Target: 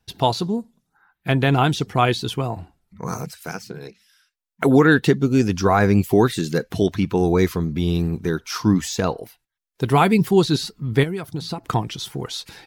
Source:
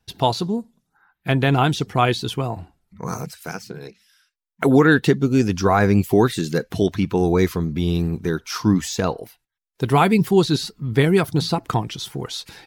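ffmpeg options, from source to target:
-filter_complex "[0:a]asettb=1/sr,asplit=3[s0][s1][s2];[s0]atrim=end=11.034[s3];[s1]atrim=start=11.03:end=11.64,asetpts=PTS-STARTPTS,afade=t=in:d=0.004:c=qsin,afade=t=out:st=0.606:d=0.004:c=qsin,acompressor=threshold=0.0631:ratio=10[s4];[s2]atrim=start=11.636[s5];[s3][s4]acrossfade=d=0.004:c1=hsin:c2=qsin[s6];[s6][s5]acrossfade=d=0.004:c1=qsin:c2=hsin"

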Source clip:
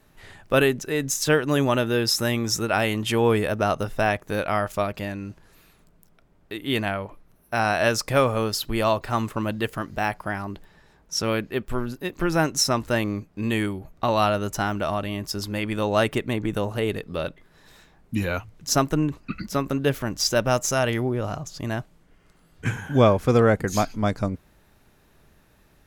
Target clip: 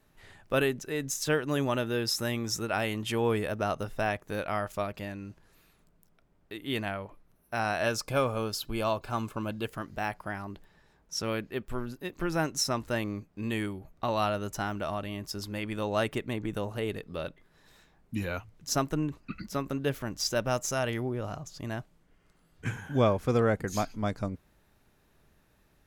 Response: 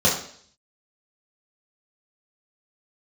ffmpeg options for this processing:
-filter_complex "[0:a]asettb=1/sr,asplit=3[s0][s1][s2];[s0]atrim=end=7.864[s3];[s1]atrim=start=7.86:end=9.66,asetpts=PTS-STARTPTS,afade=t=in:d=0.004:c=qsin,afade=t=out:st=1.796:d=0.004:c=qsin,asuperstop=centerf=1900:order=20:qfactor=7[s4];[s2]atrim=start=9.656[s5];[s3][s4]acrossfade=d=0.004:c1=hsin:c2=qsin[s6];[s6][s5]acrossfade=d=0.004:c1=qsin:c2=hsin,volume=0.422"

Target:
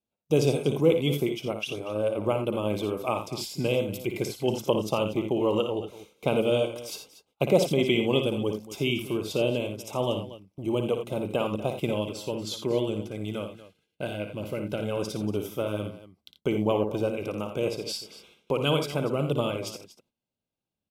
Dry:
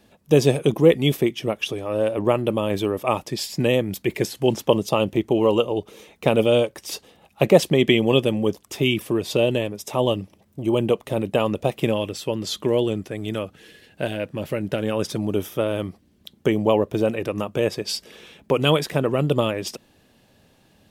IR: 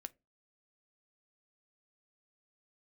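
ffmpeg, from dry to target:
-filter_complex "[0:a]agate=range=0.0447:threshold=0.00631:ratio=16:detection=peak,asuperstop=centerf=1800:order=20:qfactor=5.1,asplit=2[s0][s1];[s1]aecho=0:1:57|85|237:0.398|0.299|0.168[s2];[s0][s2]amix=inputs=2:normalize=0,volume=0.447"

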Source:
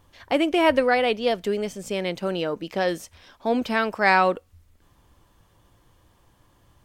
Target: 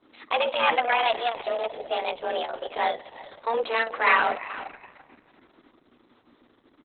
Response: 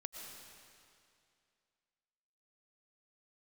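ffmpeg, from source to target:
-filter_complex "[0:a]acrossover=split=110|1100[s0][s1][s2];[s0]acompressor=mode=upward:threshold=0.00112:ratio=2.5[s3];[s1]asoftclip=type=tanh:threshold=0.0841[s4];[s3][s4][s2]amix=inputs=3:normalize=0,afreqshift=230,aecho=1:1:363|726:0.178|0.0302,asplit=2[s5][s6];[1:a]atrim=start_sample=2205,adelay=58[s7];[s6][s7]afir=irnorm=-1:irlink=0,volume=0.251[s8];[s5][s8]amix=inputs=2:normalize=0" -ar 48000 -c:a libopus -b:a 6k

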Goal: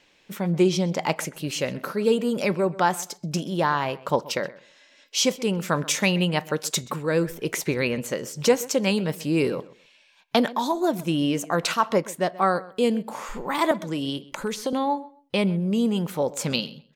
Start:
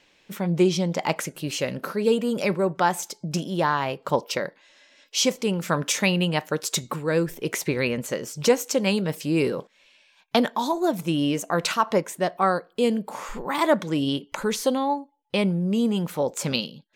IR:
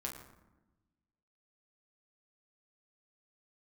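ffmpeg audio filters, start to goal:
-filter_complex "[0:a]asettb=1/sr,asplit=3[s0][s1][s2];[s0]atrim=end=13.714[s3];[s1]atrim=start=13.71:end=14.73,asetpts=PTS-STARTPTS,afade=t=in:d=0.004:c=qsin,afade=t=out:st=1.016:d=0.004:c=qsin,acrossover=split=450|5600[s4][s5][s6];[s4]acompressor=threshold=0.0398:ratio=4[s7];[s5]acompressor=threshold=0.0282:ratio=4[s8];[s6]acompressor=threshold=0.00891:ratio=4[s9];[s7][s8][s9]amix=inputs=3:normalize=0[s10];[s2]atrim=start=14.726[s11];[s3][s10]acrossfade=d=0.004:c1=hsin:c2=qsin[s12];[s12][s11]acrossfade=d=0.004:c1=qsin:c2=hsin,asplit=2[s13][s14];[s14]adelay=129,lowpass=f=3500:p=1,volume=0.112,asplit=2[s15][s16];[s16]adelay=129,lowpass=f=3500:p=1,volume=0.21[s17];[s13][s15][s17]amix=inputs=3:normalize=0"

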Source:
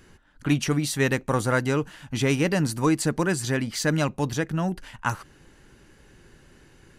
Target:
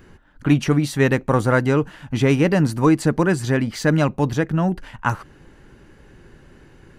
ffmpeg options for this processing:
-af "equalizer=f=9600:t=o:w=2.9:g=-10.5,volume=2.11"

